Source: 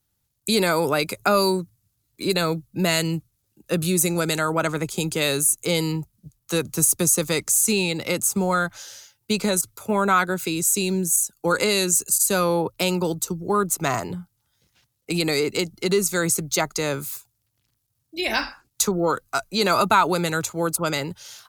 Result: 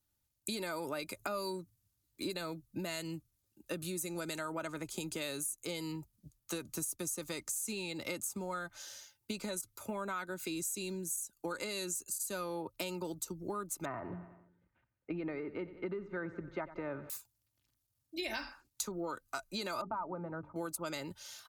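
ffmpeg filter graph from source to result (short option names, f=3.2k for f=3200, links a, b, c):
-filter_complex "[0:a]asettb=1/sr,asplit=3[a][b][c];[a]atrim=end=13.854[d];[b]atrim=start=13.85:end=17.1,asetpts=PTS-STARTPTS,afade=t=in:d=0.004:c=qsin,afade=t=out:st=3.246:d=0.004:c=qsin,lowpass=f=1.9k:w=0.5412,lowpass=f=1.9k:w=1.3066,aecho=1:1:91|182|273|364|455:0.141|0.0805|0.0459|0.0262|0.0149,atrim=end_sample=143325[e];[c]atrim=start=17.096[f];[d][e]acrossfade=d=0.004:c1=hsin:c2=qsin[g];[g][f]acrossfade=d=0.004:c1=qsin:c2=hsin,asettb=1/sr,asplit=3[h][i][j];[h]atrim=end=19.814[k];[i]atrim=start=19.81:end=20.56,asetpts=PTS-STARTPTS,afade=t=in:d=0.004:c=qsin,afade=t=out:st=0.746:d=0.004:c=qsin,lowpass=f=1.1k:w=0.5412,lowpass=f=1.1k:w=1.3066,equalizer=f=390:t=o:w=0.85:g=-6,bandreject=f=50:t=h:w=6,bandreject=f=100:t=h:w=6,bandreject=f=150:t=h:w=6,bandreject=f=200:t=h:w=6,bandreject=f=250:t=h:w=6,bandreject=f=300:t=h:w=6,bandreject=f=350:t=h:w=6,bandreject=f=400:t=h:w=6,bandreject=f=450:t=h:w=6[l];[j]atrim=start=20.556[m];[k][l]acrossfade=d=0.004:c1=hsin:c2=qsin[n];[n][m]acrossfade=d=0.004:c1=qsin:c2=hsin,acompressor=threshold=-28dB:ratio=6,aecho=1:1:3.3:0.37,volume=-8.5dB"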